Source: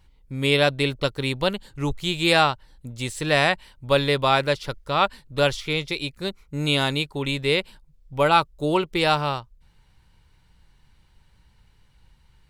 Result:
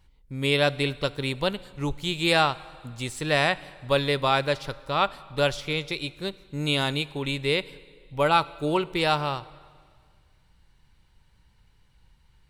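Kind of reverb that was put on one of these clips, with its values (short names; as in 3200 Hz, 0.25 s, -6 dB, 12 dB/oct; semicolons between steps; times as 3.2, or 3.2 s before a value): plate-style reverb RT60 1.9 s, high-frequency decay 0.9×, DRR 18 dB; gain -3 dB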